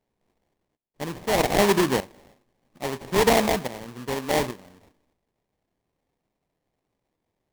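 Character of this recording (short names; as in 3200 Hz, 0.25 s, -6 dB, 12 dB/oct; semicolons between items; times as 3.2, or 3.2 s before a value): aliases and images of a low sample rate 1400 Hz, jitter 20%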